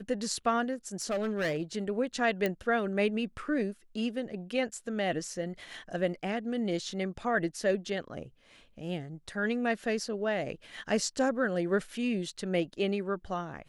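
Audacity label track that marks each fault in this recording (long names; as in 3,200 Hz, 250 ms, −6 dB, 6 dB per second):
1.020000	1.630000	clipping −26.5 dBFS
2.460000	2.460000	click −16 dBFS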